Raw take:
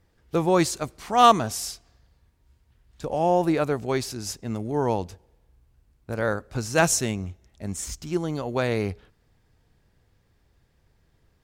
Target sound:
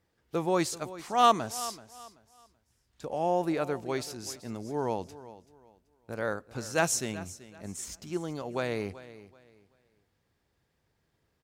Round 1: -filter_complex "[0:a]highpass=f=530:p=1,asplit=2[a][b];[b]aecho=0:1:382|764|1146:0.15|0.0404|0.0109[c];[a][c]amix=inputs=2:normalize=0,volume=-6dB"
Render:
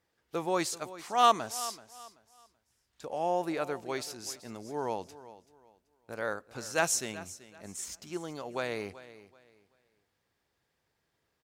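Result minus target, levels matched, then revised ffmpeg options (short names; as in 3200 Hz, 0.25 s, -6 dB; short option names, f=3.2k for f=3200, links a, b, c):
125 Hz band -6.0 dB
-filter_complex "[0:a]highpass=f=170:p=1,asplit=2[a][b];[b]aecho=0:1:382|764|1146:0.15|0.0404|0.0109[c];[a][c]amix=inputs=2:normalize=0,volume=-6dB"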